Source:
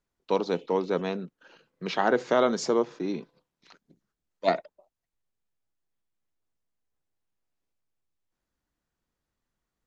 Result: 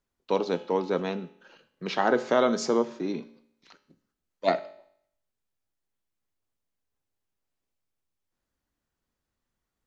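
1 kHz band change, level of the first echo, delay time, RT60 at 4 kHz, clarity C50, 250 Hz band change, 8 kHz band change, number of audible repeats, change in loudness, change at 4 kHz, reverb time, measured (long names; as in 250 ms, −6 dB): 0.0 dB, no echo audible, no echo audible, 0.65 s, 16.5 dB, +0.5 dB, can't be measured, no echo audible, 0.0 dB, +0.5 dB, 0.65 s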